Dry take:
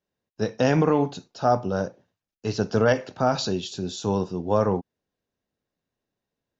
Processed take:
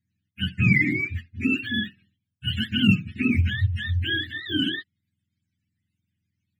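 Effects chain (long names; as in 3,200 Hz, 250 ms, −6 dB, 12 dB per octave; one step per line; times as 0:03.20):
frequency axis turned over on the octave scale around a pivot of 570 Hz
inverse Chebyshev band-stop filter 490–1,100 Hz, stop band 50 dB
level +8.5 dB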